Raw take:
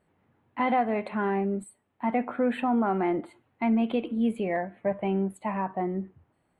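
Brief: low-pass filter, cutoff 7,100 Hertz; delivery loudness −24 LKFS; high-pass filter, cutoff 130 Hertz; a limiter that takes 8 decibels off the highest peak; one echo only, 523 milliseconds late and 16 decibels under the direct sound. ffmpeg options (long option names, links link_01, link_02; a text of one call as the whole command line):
ffmpeg -i in.wav -af "highpass=130,lowpass=7100,alimiter=limit=-23dB:level=0:latency=1,aecho=1:1:523:0.158,volume=8.5dB" out.wav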